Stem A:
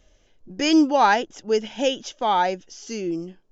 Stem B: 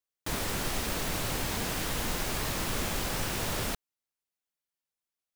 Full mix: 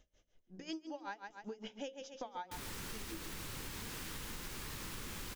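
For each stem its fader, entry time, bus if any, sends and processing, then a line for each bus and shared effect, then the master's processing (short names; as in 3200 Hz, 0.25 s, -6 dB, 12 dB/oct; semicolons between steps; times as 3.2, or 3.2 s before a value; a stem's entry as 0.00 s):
-7.0 dB, 0.00 s, no send, echo send -9.5 dB, dB-linear tremolo 5.4 Hz, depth 28 dB
-2.0 dB, 2.25 s, no send, no echo send, bell 670 Hz -11 dB 0.54 oct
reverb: off
echo: feedback echo 0.137 s, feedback 27%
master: notches 60/120/180/240/300/360/420/480/540 Hz; compressor 12:1, threshold -41 dBFS, peak gain reduction 19.5 dB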